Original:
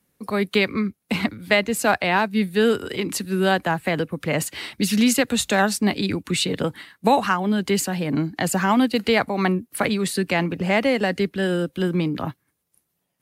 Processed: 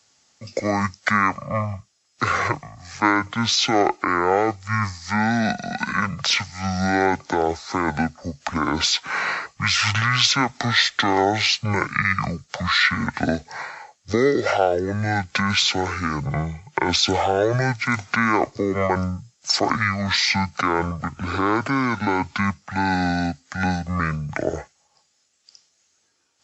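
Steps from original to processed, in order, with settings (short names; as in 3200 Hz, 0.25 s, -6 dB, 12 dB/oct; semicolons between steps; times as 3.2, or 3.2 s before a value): HPF 1500 Hz 6 dB/oct; in parallel at -3 dB: negative-ratio compressor -31 dBFS, ratio -0.5; on the sum: notch 2000 Hz, Q 6.5; speed mistake 15 ips tape played at 7.5 ips; gain +5 dB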